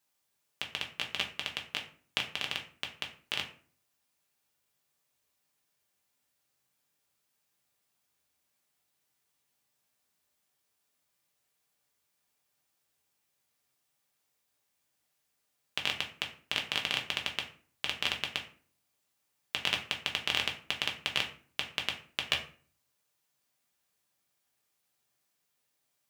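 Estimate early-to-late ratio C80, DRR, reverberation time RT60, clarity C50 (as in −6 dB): 15.0 dB, 1.0 dB, 0.45 s, 10.5 dB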